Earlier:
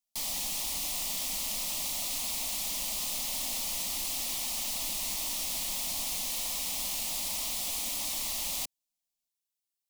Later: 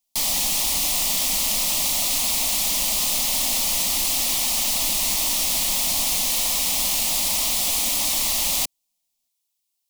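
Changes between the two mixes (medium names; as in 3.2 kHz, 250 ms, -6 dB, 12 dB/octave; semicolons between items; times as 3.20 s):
speech +9.5 dB; background +11.5 dB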